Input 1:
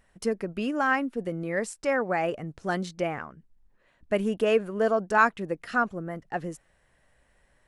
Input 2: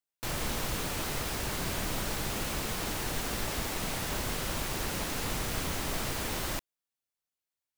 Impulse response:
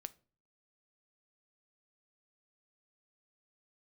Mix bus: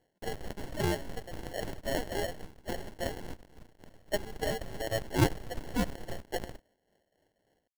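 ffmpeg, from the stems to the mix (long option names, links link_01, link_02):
-filter_complex "[0:a]highpass=720,volume=-2dB,asplit=2[link_01][link_02];[1:a]acrusher=bits=5:dc=4:mix=0:aa=0.000001,lowshelf=frequency=130:gain=7,volume=-5.5dB[link_03];[link_02]apad=whole_len=343087[link_04];[link_03][link_04]sidechaingate=range=-13dB:threshold=-48dB:ratio=16:detection=peak[link_05];[link_01][link_05]amix=inputs=2:normalize=0,tremolo=f=3.6:d=0.54,acrusher=samples=36:mix=1:aa=0.000001"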